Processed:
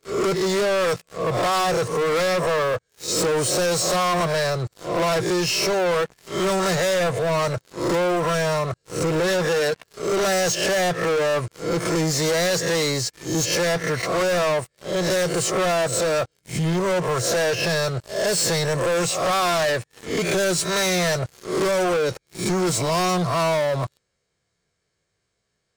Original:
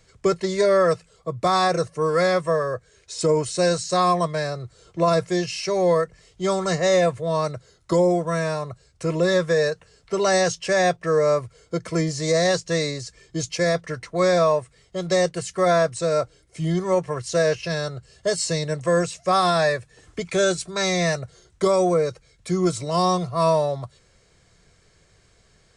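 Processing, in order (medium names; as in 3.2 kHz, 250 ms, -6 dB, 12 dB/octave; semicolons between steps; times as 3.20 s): reverse spectral sustain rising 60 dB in 0.38 s; high-pass 120 Hz 6 dB/octave; waveshaping leveller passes 5; compression 2.5:1, threshold -14 dBFS, peak gain reduction 3 dB; trim -7 dB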